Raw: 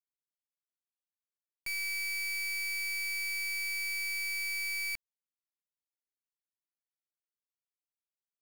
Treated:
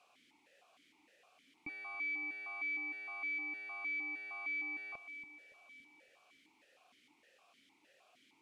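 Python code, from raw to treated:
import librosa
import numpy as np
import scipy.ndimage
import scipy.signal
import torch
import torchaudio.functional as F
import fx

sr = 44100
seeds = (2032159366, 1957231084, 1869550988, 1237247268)

y = fx.delta_mod(x, sr, bps=64000, step_db=-59.0)
y = fx.echo_feedback(y, sr, ms=283, feedback_pct=57, wet_db=-13.0)
y = fx.vowel_held(y, sr, hz=6.5)
y = y * 10.0 ** (15.0 / 20.0)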